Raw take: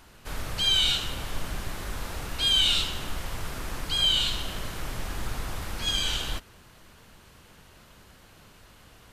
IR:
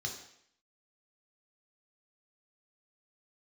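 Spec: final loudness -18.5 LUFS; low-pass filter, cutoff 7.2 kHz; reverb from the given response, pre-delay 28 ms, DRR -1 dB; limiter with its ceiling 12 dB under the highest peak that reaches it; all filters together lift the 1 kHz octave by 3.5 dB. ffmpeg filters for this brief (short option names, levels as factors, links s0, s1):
-filter_complex "[0:a]lowpass=7200,equalizer=f=1000:t=o:g=4.5,alimiter=limit=0.0794:level=0:latency=1,asplit=2[s0][s1];[1:a]atrim=start_sample=2205,adelay=28[s2];[s1][s2]afir=irnorm=-1:irlink=0,volume=1[s3];[s0][s3]amix=inputs=2:normalize=0,volume=2.82"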